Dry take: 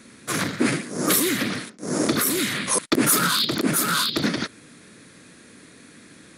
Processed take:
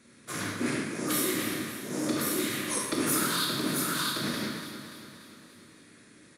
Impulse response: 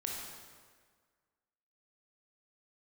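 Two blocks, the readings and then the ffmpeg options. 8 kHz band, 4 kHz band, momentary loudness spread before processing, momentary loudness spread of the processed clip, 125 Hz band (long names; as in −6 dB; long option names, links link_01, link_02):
−8.0 dB, −8.0 dB, 10 LU, 14 LU, −7.5 dB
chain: -filter_complex "[0:a]aecho=1:1:289|578|867|1156|1445|1734:0.299|0.167|0.0936|0.0524|0.0294|0.0164[link_01];[1:a]atrim=start_sample=2205,asetrate=61740,aresample=44100[link_02];[link_01][link_02]afir=irnorm=-1:irlink=0,volume=-6.5dB"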